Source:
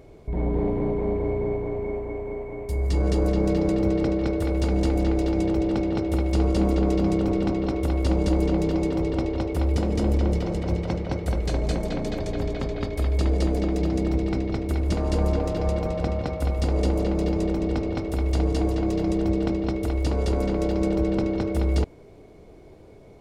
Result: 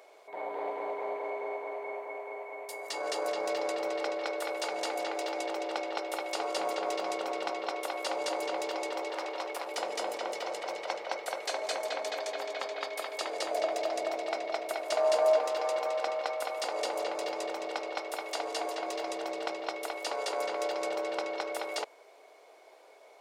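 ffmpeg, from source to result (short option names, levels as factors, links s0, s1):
-filter_complex "[0:a]asettb=1/sr,asplit=3[s0][s1][s2];[s0]atrim=end=9.104[s3];[s1]atrim=start=9.1:end=9.67,asetpts=PTS-STARTPTS,afade=t=in:d=0.004:c=qsin,afade=t=out:st=0.566:d=0.004:c=qsin,asoftclip=type=hard:threshold=0.0794[s4];[s2]atrim=start=9.666[s5];[s3][s4]acrossfade=d=0.004:c1=hsin:c2=qsin[s6];[s6][s5]acrossfade=d=0.004:c1=qsin:c2=hsin,asettb=1/sr,asplit=3[s7][s8][s9];[s7]atrim=end=13.514[s10];[s8]atrim=start=13.51:end=15.39,asetpts=PTS-STARTPTS,afade=t=in:d=0.004:c=qsin,afade=t=out:st=1.876:d=0.004:c=qsin,equalizer=f=650:w=7.9:g=13[s11];[s9]atrim=start=15.386[s12];[s10][s11]acrossfade=d=0.004:c1=hsin:c2=qsin[s13];[s13][s12]acrossfade=d=0.004:c1=qsin:c2=hsin,highpass=f=620:w=0.5412,highpass=f=620:w=1.3066,volume=1.26"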